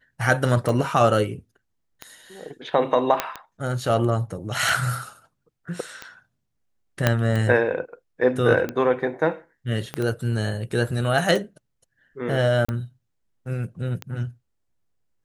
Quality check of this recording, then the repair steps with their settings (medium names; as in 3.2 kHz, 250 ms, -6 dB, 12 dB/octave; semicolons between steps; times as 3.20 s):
tick 45 rpm
3.20 s: pop -6 dBFS
7.07 s: pop -3 dBFS
9.94 s: pop -14 dBFS
12.65–12.69 s: dropout 35 ms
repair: de-click; interpolate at 12.65 s, 35 ms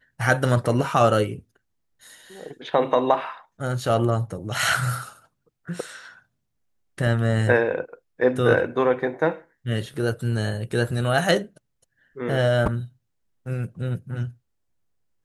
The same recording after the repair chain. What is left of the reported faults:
7.07 s: pop
9.94 s: pop